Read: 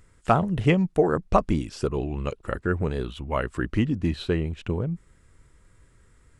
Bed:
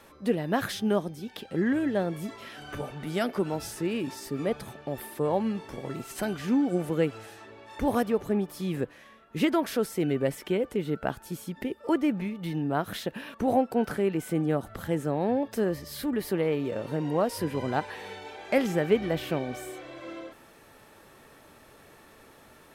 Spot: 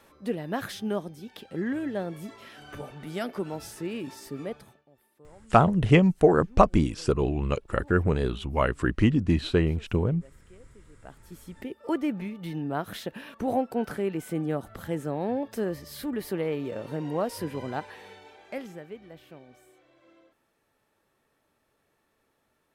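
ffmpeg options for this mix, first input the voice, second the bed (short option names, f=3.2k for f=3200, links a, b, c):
-filter_complex "[0:a]adelay=5250,volume=2dB[a];[1:a]volume=20.5dB,afade=t=out:st=4.34:d=0.51:silence=0.0707946,afade=t=in:st=10.96:d=0.95:silence=0.0595662,afade=t=out:st=17.38:d=1.52:silence=0.149624[b];[a][b]amix=inputs=2:normalize=0"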